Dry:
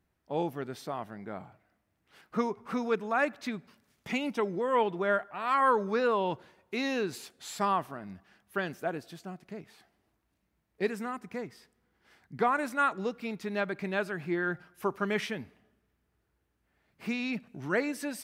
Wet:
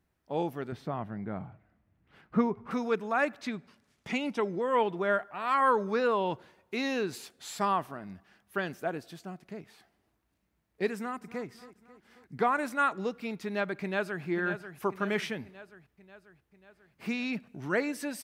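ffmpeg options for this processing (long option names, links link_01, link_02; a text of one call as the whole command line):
ffmpeg -i in.wav -filter_complex "[0:a]asettb=1/sr,asplit=3[link_01][link_02][link_03];[link_01]atrim=end=0.724[link_04];[link_02]atrim=start=0.72:end=2.71,asetpts=PTS-STARTPTS,afade=type=in:duration=0.004:curve=qsin,afade=type=out:start_time=1.986:duration=0.004:curve=qsin,bass=frequency=250:gain=10,treble=frequency=4000:gain=-14[link_05];[link_03]atrim=start=2.706[link_06];[link_04][link_05]acrossfade=duration=0.004:curve1=hsin:curve2=qsin[link_07];[link_07][link_06]acrossfade=duration=0.004:curve1=qsin:curve2=hsin,asettb=1/sr,asplit=3[link_08][link_09][link_10];[link_08]atrim=end=3.424[link_11];[link_09]atrim=start=3.42:end=4.74,asetpts=PTS-STARTPTS,afade=type=in:duration=0.004:curve=qsin,afade=type=out:start_time=1.316:duration=0.004:curve=qsin,lowpass=9700[link_12];[link_10]atrim=start=4.736[link_13];[link_11][link_12]acrossfade=duration=0.004:curve1=hsin:curve2=qsin[link_14];[link_14][link_13]acrossfade=duration=0.004:curve1=qsin:curve2=hsin,asplit=2[link_15][link_16];[link_16]afade=type=in:start_time=10.94:duration=0.01,afade=type=out:start_time=11.46:duration=0.01,aecho=0:1:270|540|810|1080|1350|1620:0.149624|0.0897741|0.0538645|0.0323187|0.0193912|0.0116347[link_17];[link_15][link_17]amix=inputs=2:normalize=0,asplit=2[link_18][link_19];[link_19]afade=type=in:start_time=13.81:duration=0.01,afade=type=out:start_time=14.24:duration=0.01,aecho=0:1:540|1080|1620|2160|2700|3240|3780:0.334965|0.200979|0.120588|0.0723525|0.0434115|0.0260469|0.0156281[link_20];[link_18][link_20]amix=inputs=2:normalize=0" out.wav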